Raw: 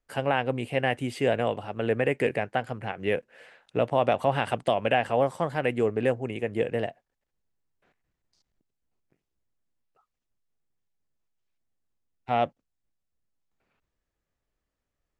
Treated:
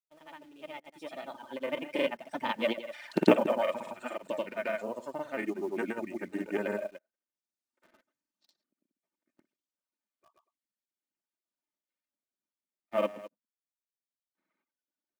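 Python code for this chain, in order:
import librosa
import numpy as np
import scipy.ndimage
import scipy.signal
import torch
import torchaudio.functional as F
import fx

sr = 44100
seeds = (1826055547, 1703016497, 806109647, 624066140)

p1 = fx.diode_clip(x, sr, knee_db=-21.0)
p2 = fx.doppler_pass(p1, sr, speed_mps=45, closest_m=2.7, pass_at_s=3.29)
p3 = fx.recorder_agc(p2, sr, target_db=-24.0, rise_db_per_s=7.4, max_gain_db=30)
p4 = scipy.signal.sosfilt(scipy.signal.ellip(3, 1.0, 40, [180.0, 9000.0], 'bandpass', fs=sr, output='sos'), p3)
p5 = p4 + 0.59 * np.pad(p4, (int(3.3 * sr / 1000.0), 0))[:len(p4)]
p6 = p5 + fx.echo_single(p5, sr, ms=120, db=-7.5, dry=0)
p7 = fx.dereverb_blind(p6, sr, rt60_s=1.1)
p8 = fx.granulator(p7, sr, seeds[0], grain_ms=100.0, per_s=20.0, spray_ms=100.0, spread_st=0)
p9 = fx.quant_companded(p8, sr, bits=6)
p10 = p8 + (p9 * 10.0 ** (-5.5 / 20.0))
y = p10 * 10.0 ** (7.5 / 20.0)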